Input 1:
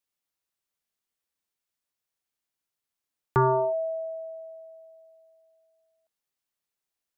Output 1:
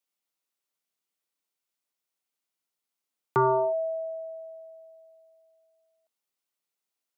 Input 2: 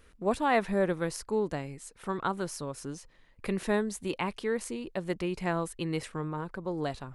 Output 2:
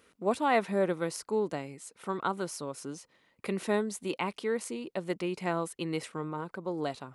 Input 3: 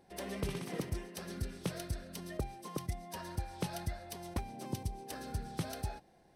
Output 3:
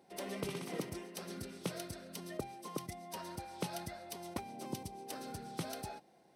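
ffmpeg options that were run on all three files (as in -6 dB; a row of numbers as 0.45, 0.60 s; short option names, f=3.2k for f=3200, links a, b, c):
-af "highpass=180,bandreject=f=1.7k:w=11"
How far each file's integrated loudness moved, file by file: -1.0, -0.5, -2.5 LU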